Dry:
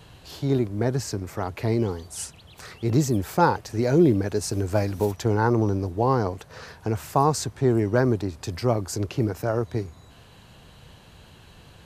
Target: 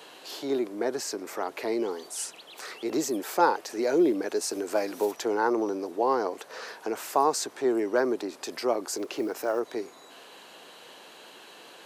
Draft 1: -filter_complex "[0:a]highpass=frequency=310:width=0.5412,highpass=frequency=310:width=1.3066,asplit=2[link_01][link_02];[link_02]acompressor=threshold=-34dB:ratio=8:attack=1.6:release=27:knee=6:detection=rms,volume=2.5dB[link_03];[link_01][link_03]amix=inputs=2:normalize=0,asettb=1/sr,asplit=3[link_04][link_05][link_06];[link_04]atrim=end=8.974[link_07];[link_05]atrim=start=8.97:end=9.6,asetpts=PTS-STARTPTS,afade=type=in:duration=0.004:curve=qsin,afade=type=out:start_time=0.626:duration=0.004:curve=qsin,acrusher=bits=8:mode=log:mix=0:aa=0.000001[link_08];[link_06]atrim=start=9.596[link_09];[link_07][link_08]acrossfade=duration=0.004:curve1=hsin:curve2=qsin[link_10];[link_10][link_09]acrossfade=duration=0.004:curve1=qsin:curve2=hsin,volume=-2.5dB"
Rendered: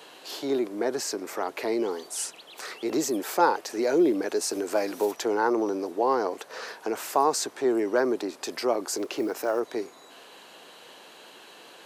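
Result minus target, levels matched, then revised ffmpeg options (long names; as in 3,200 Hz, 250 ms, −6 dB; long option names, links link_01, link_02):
downward compressor: peak gain reduction −7.5 dB
-filter_complex "[0:a]highpass=frequency=310:width=0.5412,highpass=frequency=310:width=1.3066,asplit=2[link_01][link_02];[link_02]acompressor=threshold=-42.5dB:ratio=8:attack=1.6:release=27:knee=6:detection=rms,volume=2.5dB[link_03];[link_01][link_03]amix=inputs=2:normalize=0,asettb=1/sr,asplit=3[link_04][link_05][link_06];[link_04]atrim=end=8.974[link_07];[link_05]atrim=start=8.97:end=9.6,asetpts=PTS-STARTPTS,afade=type=in:duration=0.004:curve=qsin,afade=type=out:start_time=0.626:duration=0.004:curve=qsin,acrusher=bits=8:mode=log:mix=0:aa=0.000001[link_08];[link_06]atrim=start=9.596[link_09];[link_07][link_08]acrossfade=duration=0.004:curve1=hsin:curve2=qsin[link_10];[link_10][link_09]acrossfade=duration=0.004:curve1=qsin:curve2=hsin,volume=-2.5dB"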